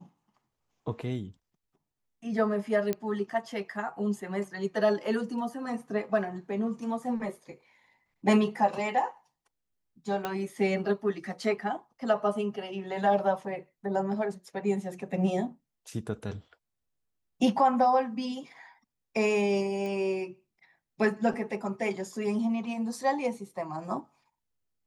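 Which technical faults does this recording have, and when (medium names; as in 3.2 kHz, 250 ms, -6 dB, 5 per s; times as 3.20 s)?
2.93 s: pop -16 dBFS
10.25 s: pop -17 dBFS
19.86 s: pop -26 dBFS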